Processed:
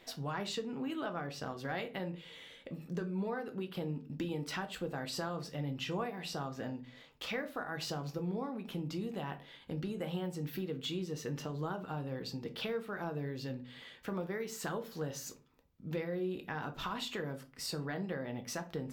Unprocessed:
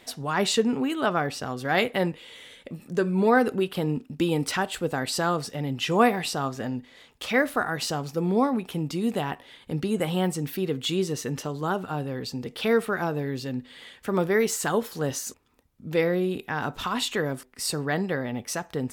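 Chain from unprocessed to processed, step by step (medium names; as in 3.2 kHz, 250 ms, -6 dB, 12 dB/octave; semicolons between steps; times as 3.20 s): peaking EQ 9.4 kHz -10 dB 0.73 oct; compression 5:1, threshold -30 dBFS, peak gain reduction 15 dB; simulated room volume 140 m³, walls furnished, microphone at 0.67 m; trim -6.5 dB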